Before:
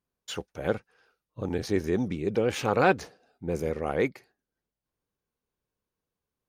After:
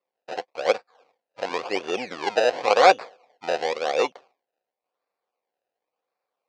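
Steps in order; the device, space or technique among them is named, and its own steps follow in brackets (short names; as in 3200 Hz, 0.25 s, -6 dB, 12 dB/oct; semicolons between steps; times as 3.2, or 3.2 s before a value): circuit-bent sampling toy (decimation with a swept rate 27×, swing 100% 0.93 Hz; speaker cabinet 490–6000 Hz, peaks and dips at 520 Hz +9 dB, 740 Hz +9 dB, 1100 Hz +5 dB, 2400 Hz +7 dB, 4500 Hz +4 dB); 3.57–4 bell 1000 Hz -5 dB 1.1 oct; gain +2 dB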